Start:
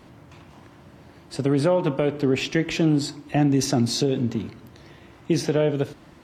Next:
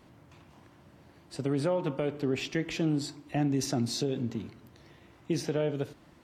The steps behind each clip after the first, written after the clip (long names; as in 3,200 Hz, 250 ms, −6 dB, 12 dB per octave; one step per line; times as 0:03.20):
high-shelf EQ 10,000 Hz +3.5 dB
level −8.5 dB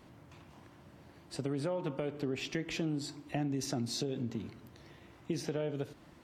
downward compressor 2.5 to 1, threshold −34 dBFS, peak gain reduction 7 dB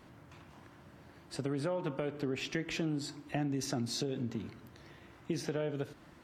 parametric band 1,500 Hz +4 dB 0.83 octaves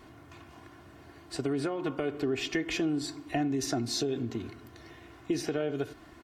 comb filter 2.8 ms, depth 58%
level +3.5 dB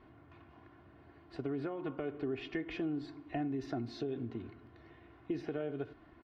high-frequency loss of the air 350 metres
level −6 dB